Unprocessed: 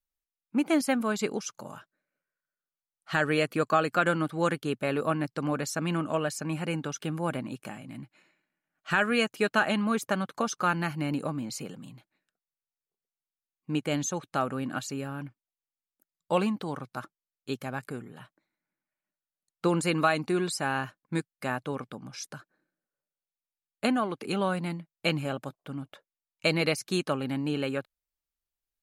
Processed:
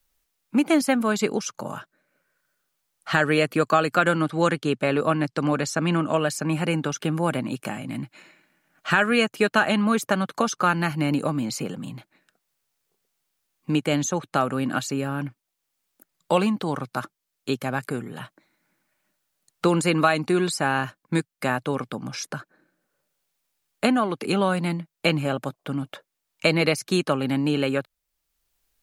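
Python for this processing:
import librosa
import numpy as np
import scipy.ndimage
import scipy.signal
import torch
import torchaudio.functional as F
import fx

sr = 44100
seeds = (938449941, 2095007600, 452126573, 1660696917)

y = fx.lowpass(x, sr, hz=8900.0, slope=12, at=(4.24, 6.16))
y = fx.band_squash(y, sr, depth_pct=40)
y = F.gain(torch.from_numpy(y), 6.0).numpy()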